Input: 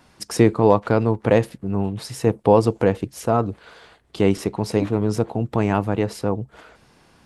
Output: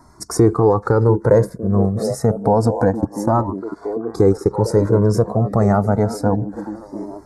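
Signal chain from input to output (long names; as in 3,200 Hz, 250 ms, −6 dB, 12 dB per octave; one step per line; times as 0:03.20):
high-shelf EQ 9,500 Hz −5.5 dB
0:02.85–0:04.51: transient designer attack +3 dB, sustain −8 dB
Butterworth band-reject 2,900 Hz, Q 0.71
echo through a band-pass that steps 690 ms, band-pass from 270 Hz, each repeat 0.7 octaves, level −9 dB
boost into a limiter +7.5 dB
flanger whose copies keep moving one way rising 0.28 Hz
level +3.5 dB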